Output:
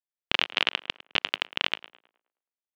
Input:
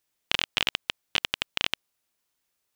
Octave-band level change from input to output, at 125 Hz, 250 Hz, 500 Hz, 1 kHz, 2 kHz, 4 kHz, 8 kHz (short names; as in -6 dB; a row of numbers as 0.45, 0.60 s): -2.5, +1.5, +3.0, +3.0, +2.0, +0.5, -9.5 dB